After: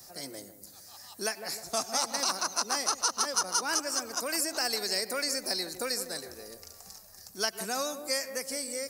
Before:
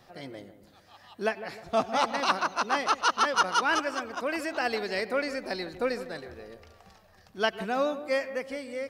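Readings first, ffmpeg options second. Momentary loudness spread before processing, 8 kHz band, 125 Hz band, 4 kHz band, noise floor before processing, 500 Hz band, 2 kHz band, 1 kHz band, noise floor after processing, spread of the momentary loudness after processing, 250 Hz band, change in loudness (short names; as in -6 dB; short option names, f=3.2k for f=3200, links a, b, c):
16 LU, +12.5 dB, -6.5 dB, +3.5 dB, -59 dBFS, -6.5 dB, -6.0 dB, -7.0 dB, -52 dBFS, 19 LU, -6.0 dB, -1.5 dB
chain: -filter_complex "[0:a]aexciter=amount=14.2:drive=3.9:freq=4.8k,acrossover=split=180|1000[a][b][c];[a]acompressor=threshold=-58dB:ratio=4[d];[b]acompressor=threshold=-33dB:ratio=4[e];[c]acompressor=threshold=-25dB:ratio=4[f];[d][e][f]amix=inputs=3:normalize=0,volume=-2dB"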